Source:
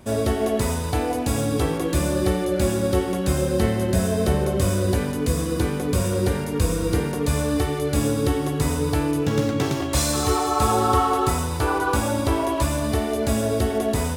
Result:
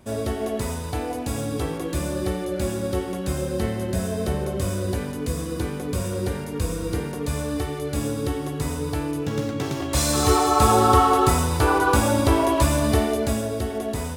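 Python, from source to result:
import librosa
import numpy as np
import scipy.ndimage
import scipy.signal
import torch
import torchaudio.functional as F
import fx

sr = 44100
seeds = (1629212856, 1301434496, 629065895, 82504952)

y = fx.gain(x, sr, db=fx.line((9.63, -4.5), (10.3, 3.0), (13.01, 3.0), (13.51, -5.0)))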